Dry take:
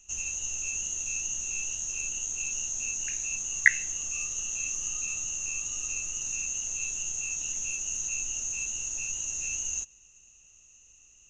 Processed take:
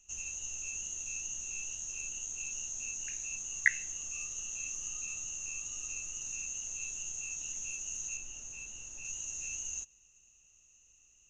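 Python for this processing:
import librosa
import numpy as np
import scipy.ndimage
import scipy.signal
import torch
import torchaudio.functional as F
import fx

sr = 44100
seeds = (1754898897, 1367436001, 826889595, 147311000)

y = fx.high_shelf(x, sr, hz=3400.0, db=-7.5, at=(8.17, 9.05))
y = y * librosa.db_to_amplitude(-7.0)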